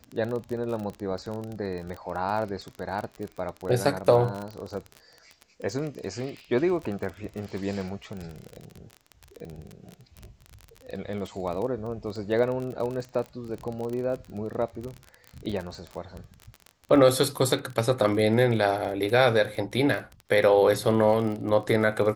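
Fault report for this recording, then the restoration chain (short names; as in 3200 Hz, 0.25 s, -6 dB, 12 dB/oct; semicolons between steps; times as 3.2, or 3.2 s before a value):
crackle 27/s -31 dBFS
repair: de-click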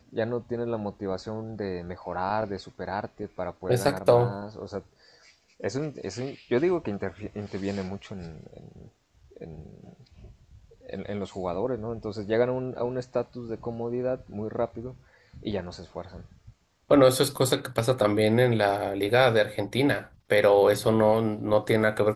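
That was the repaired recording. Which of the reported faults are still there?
none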